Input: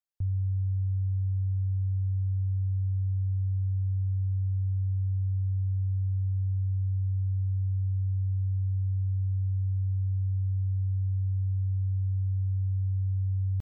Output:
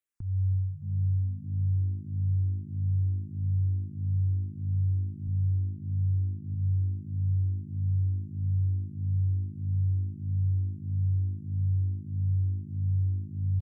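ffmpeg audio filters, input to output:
-filter_complex "[0:a]asettb=1/sr,asplit=3[s0][s1][s2];[s0]atrim=end=5.274[s3];[s1]atrim=start=5.27:end=6.54,asetpts=PTS-STARTPTS,afade=t=in:d=0.004:c=qsin,afade=t=out:st=1.266:d=0.004:c=qsin,lowshelf=f=93:g=11.5[s4];[s2]atrim=start=6.536[s5];[s3][s4]acrossfade=d=0.004:c1=hsin:c2=qsin[s6];[s6][s5]acrossfade=d=0.004:c1=qsin:c2=hsin,alimiter=level_in=1.33:limit=0.0631:level=0:latency=1:release=177,volume=0.75,asplit=6[s7][s8][s9][s10][s11][s12];[s8]adelay=308,afreqshift=53,volume=0.141[s13];[s9]adelay=616,afreqshift=106,volume=0.0733[s14];[s10]adelay=924,afreqshift=159,volume=0.038[s15];[s11]adelay=1232,afreqshift=212,volume=0.02[s16];[s12]adelay=1540,afreqshift=265,volume=0.0104[s17];[s7][s13][s14][s15][s16][s17]amix=inputs=6:normalize=0,asplit=2[s18][s19];[s19]afreqshift=-1.6[s20];[s18][s20]amix=inputs=2:normalize=1,volume=1.68"

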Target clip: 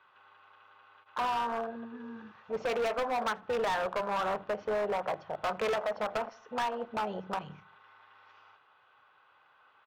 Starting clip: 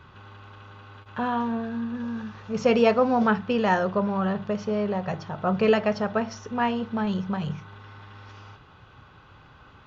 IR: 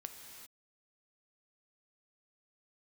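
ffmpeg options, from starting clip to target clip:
-filter_complex "[0:a]highpass=f=210:p=1,afwtdn=0.0316,acrossover=split=510 3500:gain=0.0794 1 0.2[s0][s1][s2];[s0][s1][s2]amix=inputs=3:normalize=0,acompressor=threshold=0.0251:ratio=4,volume=59.6,asoftclip=hard,volume=0.0168,asplit=2[s3][s4];[s4]adelay=80,lowpass=f=2000:p=1,volume=0.0794,asplit=2[s5][s6];[s6]adelay=80,lowpass=f=2000:p=1,volume=0.47,asplit=2[s7][s8];[s8]adelay=80,lowpass=f=2000:p=1,volume=0.47[s9];[s5][s7][s9]amix=inputs=3:normalize=0[s10];[s3][s10]amix=inputs=2:normalize=0,volume=2.51"

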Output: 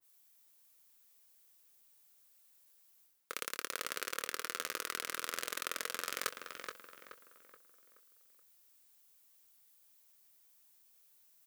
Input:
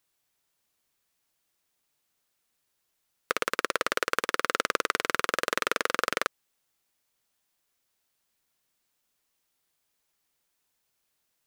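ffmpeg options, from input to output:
-filter_complex "[0:a]highpass=f=130:p=1,aemphasis=mode=production:type=50kf,areverse,acompressor=threshold=0.0178:ratio=12,areverse,asplit=2[s0][s1];[s1]adelay=24,volume=0.266[s2];[s0][s2]amix=inputs=2:normalize=0,asplit=2[s3][s4];[s4]adelay=426,lowpass=f=3200:p=1,volume=0.531,asplit=2[s5][s6];[s6]adelay=426,lowpass=f=3200:p=1,volume=0.44,asplit=2[s7][s8];[s8]adelay=426,lowpass=f=3200:p=1,volume=0.44,asplit=2[s9][s10];[s10]adelay=426,lowpass=f=3200:p=1,volume=0.44,asplit=2[s11][s12];[s12]adelay=426,lowpass=f=3200:p=1,volume=0.44[s13];[s3][s5][s7][s9][s11][s13]amix=inputs=6:normalize=0,adynamicequalizer=threshold=0.002:dfrequency=1900:dqfactor=0.7:tfrequency=1900:tqfactor=0.7:attack=5:release=100:ratio=0.375:range=3:mode=boostabove:tftype=highshelf,volume=0.794"

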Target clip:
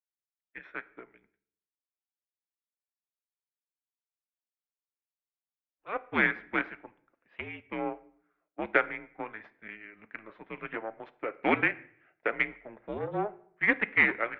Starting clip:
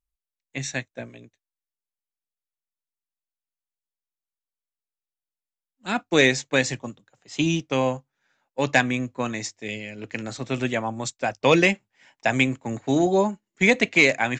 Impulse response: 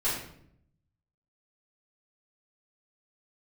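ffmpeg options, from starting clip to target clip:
-filter_complex "[0:a]aeval=exprs='0.596*(cos(1*acos(clip(val(0)/0.596,-1,1)))-cos(1*PI/2))+0.133*(cos(3*acos(clip(val(0)/0.596,-1,1)))-cos(3*PI/2))+0.0211*(cos(8*acos(clip(val(0)/0.596,-1,1)))-cos(8*PI/2))':c=same,asplit=2[s0][s1];[1:a]atrim=start_sample=2205[s2];[s1][s2]afir=irnorm=-1:irlink=0,volume=0.0668[s3];[s0][s3]amix=inputs=2:normalize=0,highpass=f=550:t=q:w=0.5412,highpass=f=550:t=q:w=1.307,lowpass=f=2600:t=q:w=0.5176,lowpass=f=2600:t=q:w=0.7071,lowpass=f=2600:t=q:w=1.932,afreqshift=-220"

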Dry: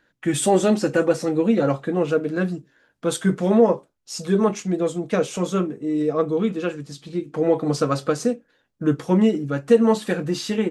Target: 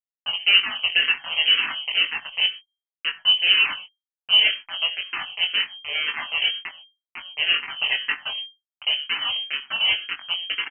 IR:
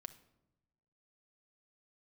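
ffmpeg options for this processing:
-filter_complex "[0:a]agate=range=0.0224:threshold=0.0316:ratio=3:detection=peak,afwtdn=0.0398,aemphasis=mode=production:type=cd,bandreject=f=164.4:t=h:w=4,bandreject=f=328.8:t=h:w=4,bandreject=f=493.2:t=h:w=4,bandreject=f=657.6:t=h:w=4,bandreject=f=822:t=h:w=4,bandreject=f=986.4:t=h:w=4,bandreject=f=1150.8:t=h:w=4,bandreject=f=1315.2:t=h:w=4,bandreject=f=1479.6:t=h:w=4,asplit=3[s0][s1][s2];[s0]afade=t=out:st=8.12:d=0.02[s3];[s1]asubboost=boost=3:cutoff=100,afade=t=in:st=8.12:d=0.02,afade=t=out:st=10.24:d=0.02[s4];[s2]afade=t=in:st=10.24:d=0.02[s5];[s3][s4][s5]amix=inputs=3:normalize=0,acompressor=mode=upward:threshold=0.0708:ratio=2.5,aeval=exprs='val(0)*gte(abs(val(0)),0.112)':c=same,asplit=2[s6][s7];[s7]adelay=21,volume=0.531[s8];[s6][s8]amix=inputs=2:normalize=0[s9];[1:a]atrim=start_sample=2205,afade=t=out:st=0.18:d=0.01,atrim=end_sample=8379[s10];[s9][s10]afir=irnorm=-1:irlink=0,lowpass=f=2700:t=q:w=0.5098,lowpass=f=2700:t=q:w=0.6013,lowpass=f=2700:t=q:w=0.9,lowpass=f=2700:t=q:w=2.563,afreqshift=-3200,asplit=2[s11][s12];[s12]afreqshift=-2[s13];[s11][s13]amix=inputs=2:normalize=1,volume=2"

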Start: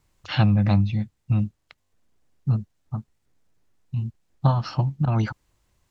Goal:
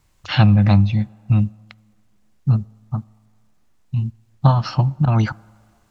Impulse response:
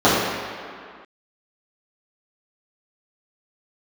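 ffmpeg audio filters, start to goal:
-filter_complex "[0:a]equalizer=f=410:w=1.4:g=-3.5,asplit=2[s0][s1];[1:a]atrim=start_sample=2205,lowshelf=f=150:g=-9.5[s2];[s1][s2]afir=irnorm=-1:irlink=0,volume=0.00335[s3];[s0][s3]amix=inputs=2:normalize=0,volume=2"

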